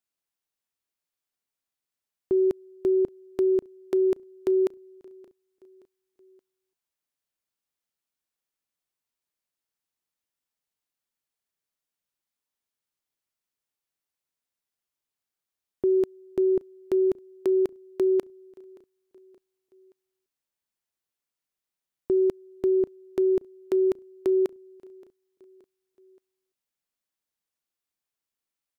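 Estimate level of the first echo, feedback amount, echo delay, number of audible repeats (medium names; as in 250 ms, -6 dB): -24.0 dB, 50%, 574 ms, 2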